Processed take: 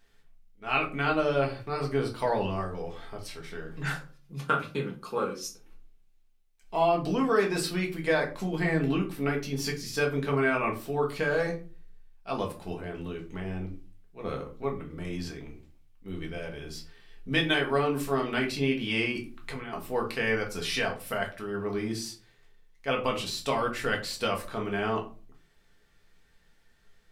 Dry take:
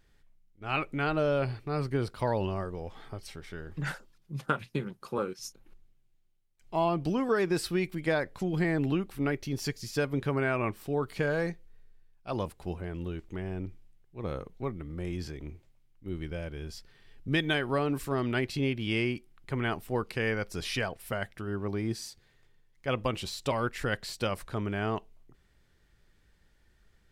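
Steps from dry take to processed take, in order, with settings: bass shelf 280 Hz -10.5 dB; 19.12–19.73 s: compressor with a negative ratio -42 dBFS, ratio -1; simulated room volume 190 m³, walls furnished, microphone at 1.6 m; trim +1.5 dB

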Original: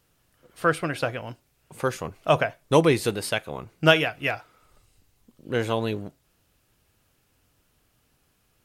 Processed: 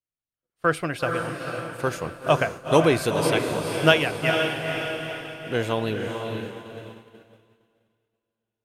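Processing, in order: echo that smears into a reverb 473 ms, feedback 57%, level -4.5 dB; expander -30 dBFS

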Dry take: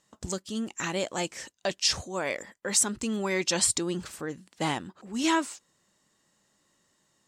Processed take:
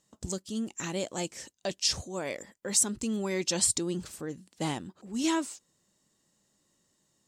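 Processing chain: peaking EQ 1.5 kHz -8 dB 2.5 oct

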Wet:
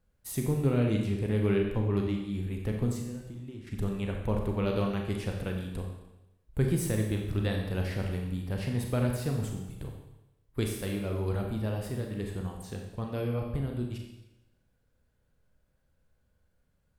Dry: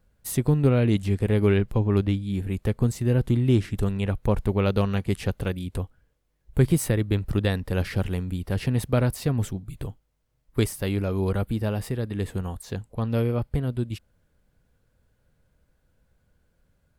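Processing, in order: 2.94–3.67 s: compression 10:1, threshold -32 dBFS, peak gain reduction 17 dB; Schroeder reverb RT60 0.96 s, combs from 29 ms, DRR 1.5 dB; trim -8 dB

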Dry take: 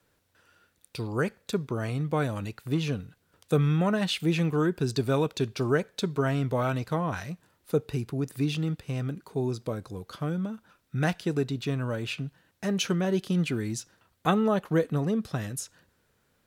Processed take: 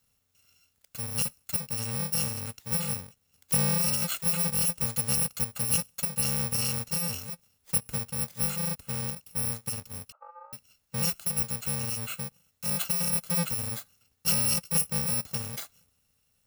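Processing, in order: bit-reversed sample order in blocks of 128 samples; 10.12–10.53 s: Chebyshev band-pass 600–1300 Hz, order 3; trim -2 dB

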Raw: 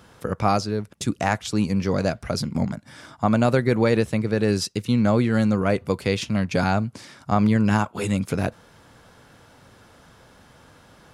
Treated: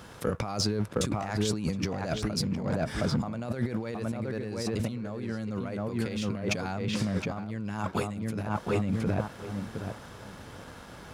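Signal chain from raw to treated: filtered feedback delay 716 ms, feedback 20%, low-pass 1.7 kHz, level -3.5 dB; compressor with a negative ratio -29 dBFS, ratio -1; waveshaping leveller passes 1; trim -6 dB

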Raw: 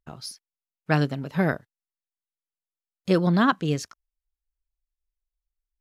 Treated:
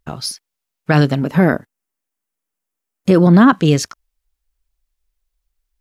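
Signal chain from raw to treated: 1.22–3.53 s: ten-band graphic EQ 125 Hz -4 dB, 250 Hz +6 dB, 4 kHz -7 dB; loudness maximiser +14 dB; trim -1 dB

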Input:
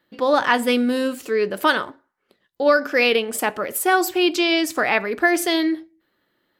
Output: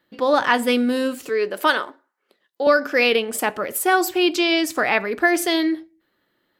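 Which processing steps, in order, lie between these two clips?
1.29–2.67 s: high-pass 310 Hz 12 dB/octave

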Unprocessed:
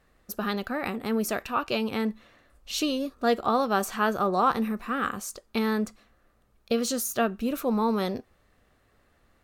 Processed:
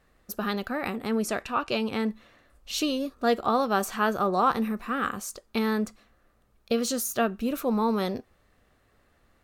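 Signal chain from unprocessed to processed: 1.06–2.06 s: low-pass 11 kHz 24 dB/octave

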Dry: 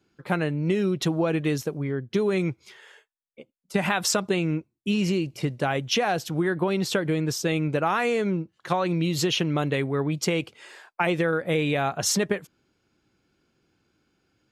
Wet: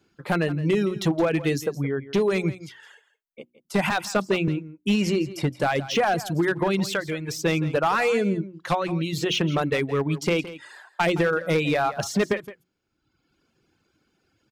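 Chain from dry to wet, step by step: hum notches 60/120/180/240/300/360 Hz; reverb removal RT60 1.1 s; de-esser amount 70%; 6.90–7.40 s: peaking EQ 220 Hz -14.5 dB -> -5 dB 2.4 oct; 8.74–9.26 s: compression, threshold -26 dBFS, peak gain reduction 4.5 dB; hard clipper -19.5 dBFS, distortion -17 dB; delay 167 ms -15.5 dB; 3.90–4.48 s: three bands expanded up and down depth 70%; trim +4 dB

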